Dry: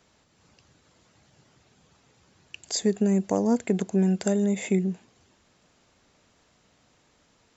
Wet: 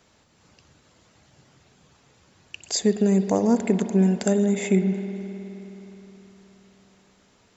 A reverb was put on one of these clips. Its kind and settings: spring tank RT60 3.8 s, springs 52 ms, chirp 25 ms, DRR 9 dB; gain +3 dB

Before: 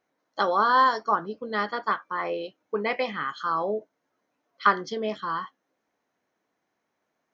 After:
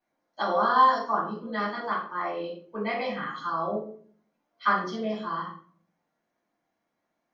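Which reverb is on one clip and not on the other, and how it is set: shoebox room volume 470 m³, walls furnished, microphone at 8.2 m; gain -14 dB

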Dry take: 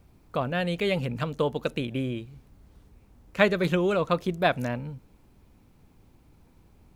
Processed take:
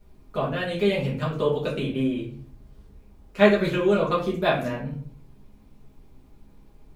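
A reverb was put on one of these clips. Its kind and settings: shoebox room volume 39 m³, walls mixed, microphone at 1.4 m; gain -7 dB

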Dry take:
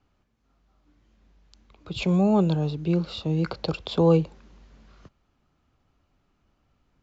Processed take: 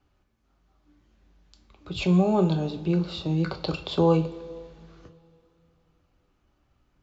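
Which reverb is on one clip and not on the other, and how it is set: two-slope reverb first 0.33 s, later 2.7 s, from -19 dB, DRR 5.5 dB; gain -1 dB

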